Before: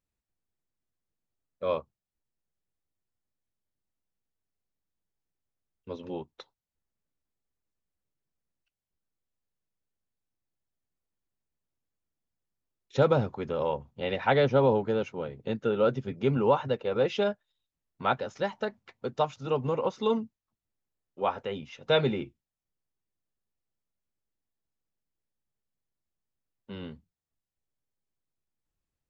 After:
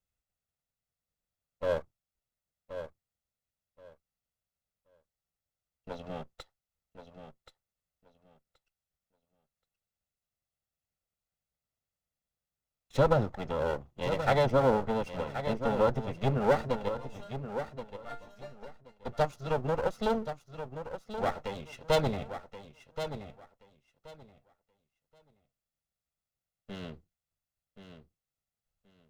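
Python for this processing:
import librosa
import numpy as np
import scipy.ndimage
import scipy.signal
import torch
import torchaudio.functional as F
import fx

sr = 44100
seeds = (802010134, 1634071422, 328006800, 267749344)

y = fx.lower_of_two(x, sr, delay_ms=1.5)
y = fx.dynamic_eq(y, sr, hz=2600.0, q=0.79, threshold_db=-43.0, ratio=4.0, max_db=-6)
y = fx.resonator_bank(y, sr, root=58, chord='major', decay_s=0.22, at=(16.88, 19.05), fade=0.02)
y = fx.echo_feedback(y, sr, ms=1077, feedback_pct=19, wet_db=-10)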